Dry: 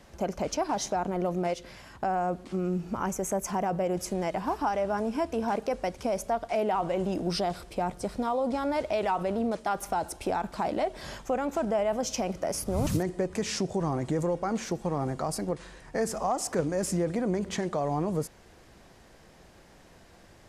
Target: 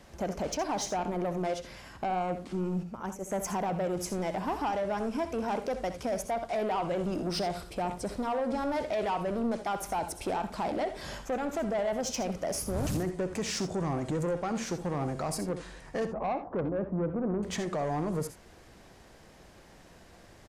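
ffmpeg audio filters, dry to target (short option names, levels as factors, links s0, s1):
-filter_complex "[0:a]asplit=3[s0][s1][s2];[s0]afade=t=out:st=2.82:d=0.02[s3];[s1]agate=range=0.282:threshold=0.0398:ratio=16:detection=peak,afade=t=in:st=2.82:d=0.02,afade=t=out:st=3.3:d=0.02[s4];[s2]afade=t=in:st=3.3:d=0.02[s5];[s3][s4][s5]amix=inputs=3:normalize=0,asettb=1/sr,asplit=3[s6][s7][s8];[s6]atrim=end=16.054[s9];[s7]atrim=start=16.05:end=17.43,asetpts=PTS-STARTPTS,afade=t=in:d=0.004:c=qsin,afade=t=out:st=1.376:d=0.004:c=qsin,lowpass=f=1100:w=0.5412,lowpass=f=1100:w=1.3066[s10];[s8]atrim=start=17.426[s11];[s9][s10]acrossfade=d=0.004:c1=hsin:c2=qsin[s12];[s12][s11]acrossfade=d=0.004:c1=qsin:c2=hsin,asoftclip=type=tanh:threshold=0.0531,aecho=1:1:65|82:0.251|0.188"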